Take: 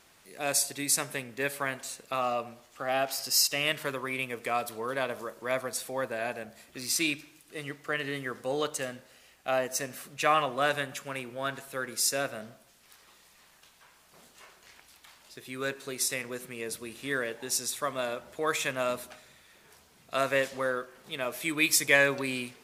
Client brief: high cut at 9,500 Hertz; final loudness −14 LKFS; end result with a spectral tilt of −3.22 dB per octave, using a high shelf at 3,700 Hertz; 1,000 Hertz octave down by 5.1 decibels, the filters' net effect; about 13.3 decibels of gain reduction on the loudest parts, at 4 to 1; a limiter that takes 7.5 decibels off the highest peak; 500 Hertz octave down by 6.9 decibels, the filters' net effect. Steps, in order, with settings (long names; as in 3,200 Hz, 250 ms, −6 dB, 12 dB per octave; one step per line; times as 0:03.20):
low-pass filter 9,500 Hz
parametric band 500 Hz −7 dB
parametric band 1,000 Hz −5.5 dB
high-shelf EQ 3,700 Hz +5.5 dB
downward compressor 4 to 1, threshold −34 dBFS
level +25 dB
brickwall limiter −1 dBFS